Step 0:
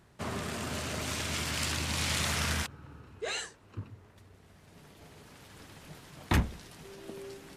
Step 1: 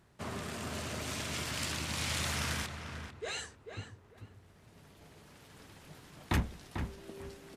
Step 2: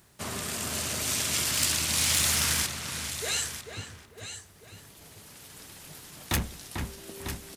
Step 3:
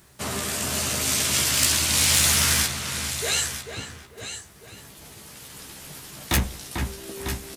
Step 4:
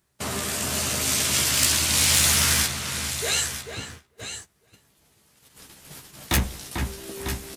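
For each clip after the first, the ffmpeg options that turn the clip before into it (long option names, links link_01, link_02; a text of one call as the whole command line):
ffmpeg -i in.wav -filter_complex "[0:a]asplit=2[link_01][link_02];[link_02]adelay=444,lowpass=frequency=2300:poles=1,volume=-7dB,asplit=2[link_03][link_04];[link_04]adelay=444,lowpass=frequency=2300:poles=1,volume=0.23,asplit=2[link_05][link_06];[link_06]adelay=444,lowpass=frequency=2300:poles=1,volume=0.23[link_07];[link_01][link_03][link_05][link_07]amix=inputs=4:normalize=0,volume=-4dB" out.wav
ffmpeg -i in.wav -af "aecho=1:1:948:0.282,asoftclip=type=hard:threshold=-26.5dB,crystalizer=i=3.5:c=0,volume=2.5dB" out.wav
ffmpeg -i in.wav -filter_complex "[0:a]asplit=2[link_01][link_02];[link_02]adelay=15,volume=-5dB[link_03];[link_01][link_03]amix=inputs=2:normalize=0,volume=4.5dB" out.wav
ffmpeg -i in.wav -af "agate=range=-17dB:threshold=-40dB:ratio=16:detection=peak" out.wav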